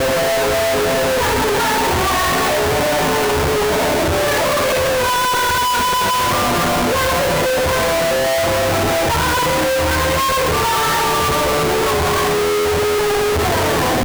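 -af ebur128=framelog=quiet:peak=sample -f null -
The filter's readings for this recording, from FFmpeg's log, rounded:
Integrated loudness:
  I:         -15.7 LUFS
  Threshold: -25.7 LUFS
Loudness range:
  LRA:         0.3 LU
  Threshold: -35.7 LUFS
  LRA low:   -15.8 LUFS
  LRA high:  -15.5 LUFS
Sample peak:
  Peak:      -14.0 dBFS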